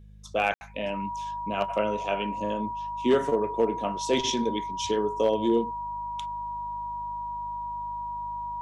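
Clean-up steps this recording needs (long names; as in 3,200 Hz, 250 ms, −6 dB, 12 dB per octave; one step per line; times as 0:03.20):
clipped peaks rebuilt −14.5 dBFS
hum removal 51.3 Hz, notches 4
notch filter 960 Hz, Q 30
ambience match 0:00.54–0:00.61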